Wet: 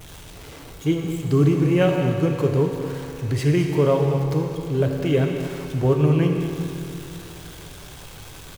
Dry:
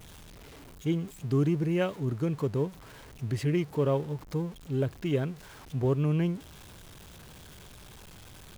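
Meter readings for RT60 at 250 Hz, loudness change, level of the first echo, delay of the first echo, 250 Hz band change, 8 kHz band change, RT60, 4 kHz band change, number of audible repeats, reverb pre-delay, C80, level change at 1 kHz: 2.9 s, +8.5 dB, -11.5 dB, 220 ms, +8.5 dB, +10.0 dB, 2.9 s, +9.5 dB, 1, 9 ms, 3.5 dB, +10.0 dB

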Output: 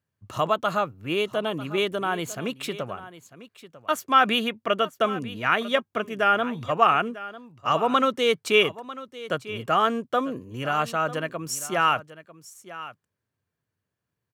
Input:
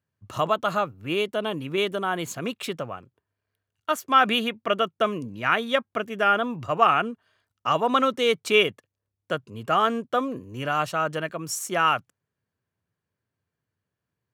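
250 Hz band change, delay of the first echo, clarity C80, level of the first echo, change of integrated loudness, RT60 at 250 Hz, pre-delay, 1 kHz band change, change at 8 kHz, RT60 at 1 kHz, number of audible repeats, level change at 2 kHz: 0.0 dB, 947 ms, no reverb, -16.0 dB, 0.0 dB, no reverb, no reverb, 0.0 dB, 0.0 dB, no reverb, 1, 0.0 dB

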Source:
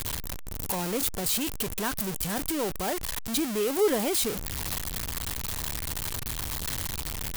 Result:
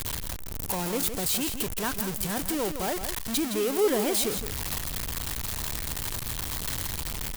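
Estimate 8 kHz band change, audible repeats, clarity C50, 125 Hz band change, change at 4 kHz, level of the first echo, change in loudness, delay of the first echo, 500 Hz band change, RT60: +0.5 dB, 1, no reverb, +0.5 dB, +0.5 dB, -9.0 dB, +0.5 dB, 165 ms, +0.5 dB, no reverb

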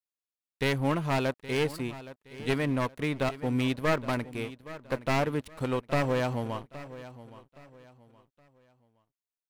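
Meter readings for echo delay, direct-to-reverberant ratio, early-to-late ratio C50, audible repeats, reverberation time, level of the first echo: 819 ms, no reverb, no reverb, 2, no reverb, -16.0 dB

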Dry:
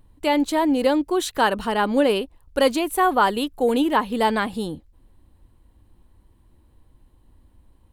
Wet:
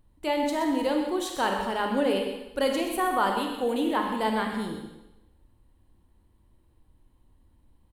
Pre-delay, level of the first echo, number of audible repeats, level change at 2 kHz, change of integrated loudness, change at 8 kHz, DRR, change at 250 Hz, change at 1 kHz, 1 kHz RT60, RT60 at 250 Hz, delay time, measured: 27 ms, -10.0 dB, 1, -6.0 dB, -6.0 dB, -6.0 dB, 2.0 dB, -6.0 dB, -6.0 dB, 0.95 s, 0.90 s, 127 ms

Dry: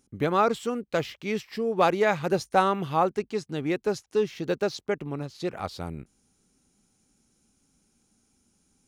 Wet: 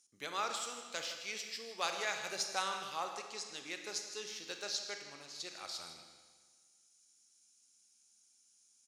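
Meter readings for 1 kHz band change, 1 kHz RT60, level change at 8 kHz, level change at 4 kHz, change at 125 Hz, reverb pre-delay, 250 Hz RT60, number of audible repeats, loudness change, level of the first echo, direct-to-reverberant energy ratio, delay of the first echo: -14.5 dB, 1.6 s, +4.0 dB, 0.0 dB, -30.0 dB, 28 ms, 1.6 s, 1, -12.5 dB, -12.5 dB, 4.5 dB, 158 ms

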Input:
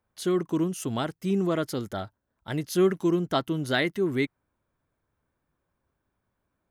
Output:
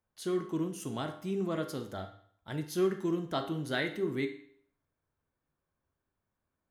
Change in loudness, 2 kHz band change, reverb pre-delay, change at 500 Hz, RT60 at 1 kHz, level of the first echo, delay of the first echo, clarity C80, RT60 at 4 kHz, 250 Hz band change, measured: -7.0 dB, -6.5 dB, 10 ms, -6.5 dB, 0.60 s, no echo, no echo, 13.5 dB, 0.55 s, -7.5 dB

